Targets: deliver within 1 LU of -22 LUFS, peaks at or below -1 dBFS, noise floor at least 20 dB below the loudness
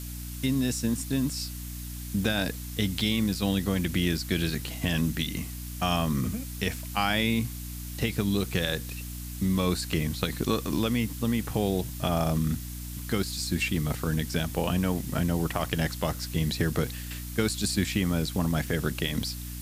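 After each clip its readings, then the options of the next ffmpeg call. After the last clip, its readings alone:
hum 60 Hz; highest harmonic 300 Hz; hum level -36 dBFS; noise floor -37 dBFS; noise floor target -49 dBFS; loudness -29.0 LUFS; peak level -11.0 dBFS; loudness target -22.0 LUFS
-> -af "bandreject=f=60:t=h:w=6,bandreject=f=120:t=h:w=6,bandreject=f=180:t=h:w=6,bandreject=f=240:t=h:w=6,bandreject=f=300:t=h:w=6"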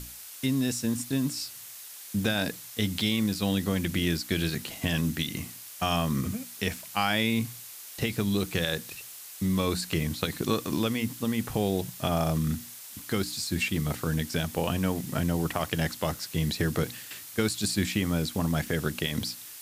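hum not found; noise floor -44 dBFS; noise floor target -49 dBFS
-> -af "afftdn=nr=6:nf=-44"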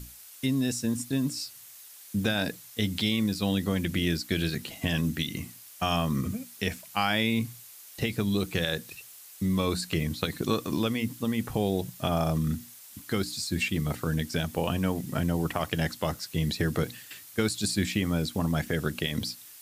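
noise floor -49 dBFS; noise floor target -50 dBFS
-> -af "afftdn=nr=6:nf=-49"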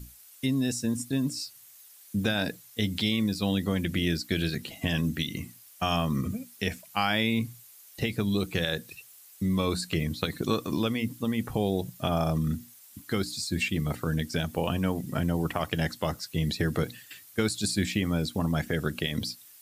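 noise floor -53 dBFS; loudness -29.5 LUFS; peak level -12.0 dBFS; loudness target -22.0 LUFS
-> -af "volume=2.37"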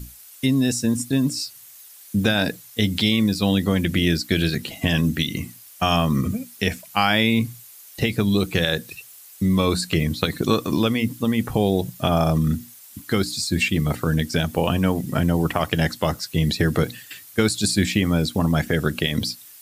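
loudness -22.0 LUFS; peak level -4.5 dBFS; noise floor -45 dBFS

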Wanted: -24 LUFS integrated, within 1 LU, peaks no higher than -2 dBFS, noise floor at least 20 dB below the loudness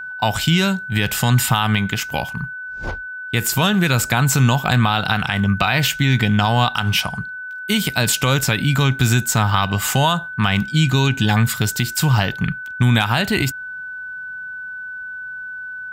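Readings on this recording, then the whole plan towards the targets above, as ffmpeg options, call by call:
steady tone 1.5 kHz; tone level -28 dBFS; loudness -18.0 LUFS; peak level -2.0 dBFS; loudness target -24.0 LUFS
-> -af "bandreject=f=1500:w=30"
-af "volume=0.501"

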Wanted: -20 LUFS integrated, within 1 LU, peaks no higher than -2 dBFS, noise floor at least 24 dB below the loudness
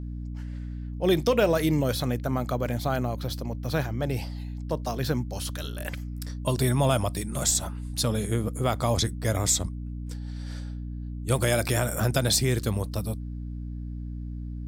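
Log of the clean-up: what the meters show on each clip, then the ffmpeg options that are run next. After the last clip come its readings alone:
hum 60 Hz; highest harmonic 300 Hz; hum level -32 dBFS; loudness -28.0 LUFS; peak level -10.5 dBFS; loudness target -20.0 LUFS
-> -af "bandreject=f=60:t=h:w=4,bandreject=f=120:t=h:w=4,bandreject=f=180:t=h:w=4,bandreject=f=240:t=h:w=4,bandreject=f=300:t=h:w=4"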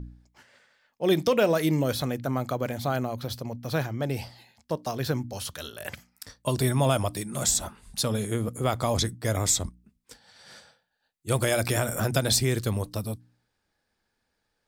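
hum not found; loudness -27.0 LUFS; peak level -10.0 dBFS; loudness target -20.0 LUFS
-> -af "volume=2.24"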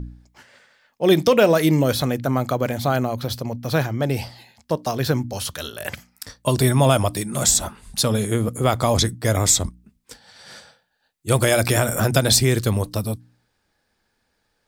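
loudness -20.0 LUFS; peak level -3.0 dBFS; noise floor -71 dBFS

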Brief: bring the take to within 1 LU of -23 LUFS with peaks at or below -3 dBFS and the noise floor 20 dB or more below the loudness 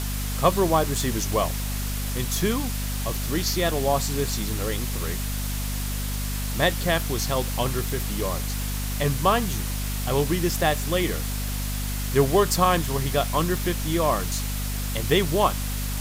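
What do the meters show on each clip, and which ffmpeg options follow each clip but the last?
hum 50 Hz; highest harmonic 250 Hz; hum level -26 dBFS; noise floor -28 dBFS; noise floor target -45 dBFS; loudness -25.0 LUFS; peak level -6.0 dBFS; loudness target -23.0 LUFS
-> -af "bandreject=f=50:t=h:w=4,bandreject=f=100:t=h:w=4,bandreject=f=150:t=h:w=4,bandreject=f=200:t=h:w=4,bandreject=f=250:t=h:w=4"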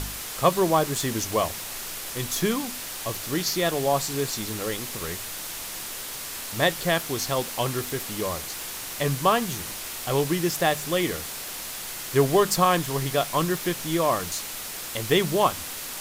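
hum not found; noise floor -35 dBFS; noise floor target -46 dBFS
-> -af "afftdn=nr=11:nf=-35"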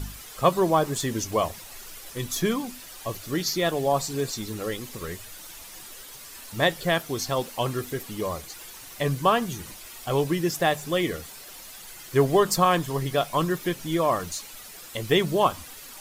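noise floor -44 dBFS; noise floor target -46 dBFS
-> -af "afftdn=nr=6:nf=-44"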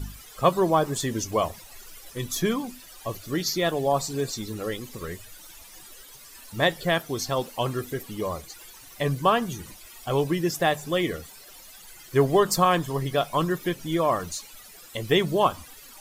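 noise floor -47 dBFS; loudness -25.5 LUFS; peak level -6.0 dBFS; loudness target -23.0 LUFS
-> -af "volume=1.33"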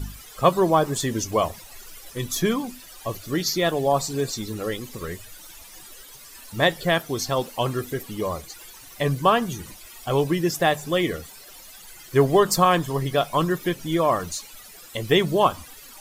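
loudness -23.5 LUFS; peak level -3.5 dBFS; noise floor -45 dBFS

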